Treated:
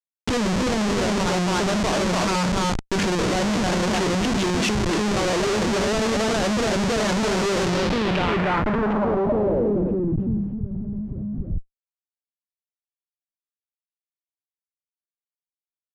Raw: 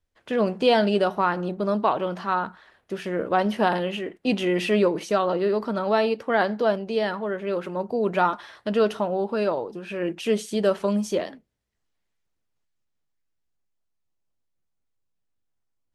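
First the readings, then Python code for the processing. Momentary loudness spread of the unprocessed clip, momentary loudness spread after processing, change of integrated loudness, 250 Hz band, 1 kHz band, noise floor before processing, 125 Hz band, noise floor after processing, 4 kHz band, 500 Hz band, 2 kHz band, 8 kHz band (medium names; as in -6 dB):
7 LU, 6 LU, +2.0 dB, +4.5 dB, +0.5 dB, -76 dBFS, +9.0 dB, under -85 dBFS, +7.0 dB, -0.5 dB, +4.0 dB, +14.5 dB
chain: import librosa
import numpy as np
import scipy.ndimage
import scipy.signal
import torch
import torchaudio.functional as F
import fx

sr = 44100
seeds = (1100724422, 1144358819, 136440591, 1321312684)

p1 = fx.high_shelf(x, sr, hz=3800.0, db=10.5)
p2 = fx.hum_notches(p1, sr, base_hz=50, count=5)
p3 = fx.level_steps(p2, sr, step_db=21)
p4 = p2 + (p3 * librosa.db_to_amplitude(-2.0))
p5 = scipy.signal.sosfilt(scipy.signal.butter(2, 61.0, 'highpass', fs=sr, output='sos'), p4)
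p6 = fx.peak_eq(p5, sr, hz=190.0, db=8.0, octaves=2.3)
p7 = p6 + fx.echo_single(p6, sr, ms=287, db=-6.0, dry=0)
p8 = fx.over_compress(p7, sr, threshold_db=-20.0, ratio=-1.0)
p9 = fx.schmitt(p8, sr, flips_db=-26.0)
y = fx.filter_sweep_lowpass(p9, sr, from_hz=6700.0, to_hz=130.0, start_s=7.63, end_s=10.61, q=1.4)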